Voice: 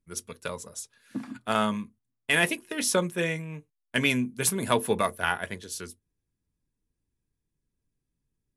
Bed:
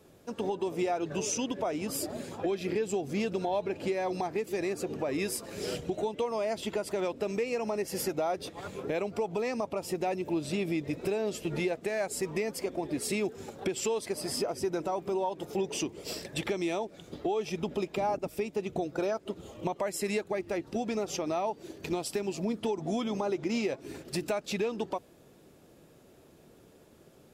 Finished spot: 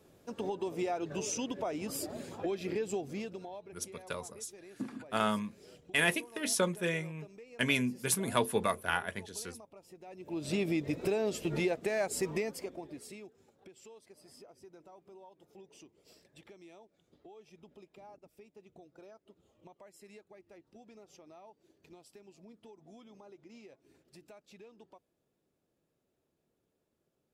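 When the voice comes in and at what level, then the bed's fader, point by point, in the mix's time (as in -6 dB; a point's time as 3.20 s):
3.65 s, -5.0 dB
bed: 2.97 s -4 dB
3.82 s -21 dB
10.04 s -21 dB
10.50 s -0.5 dB
12.31 s -0.5 dB
13.45 s -23.5 dB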